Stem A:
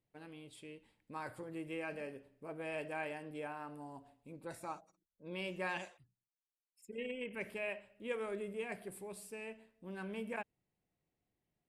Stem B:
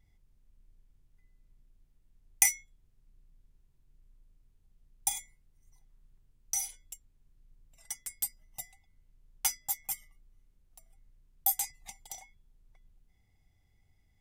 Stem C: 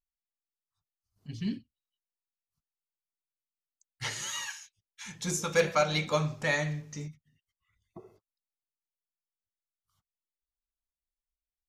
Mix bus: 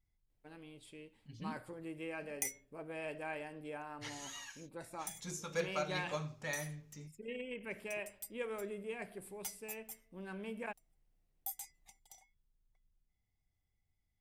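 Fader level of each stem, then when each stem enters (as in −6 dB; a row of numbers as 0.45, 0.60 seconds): −1.5, −14.5, −12.0 decibels; 0.30, 0.00, 0.00 seconds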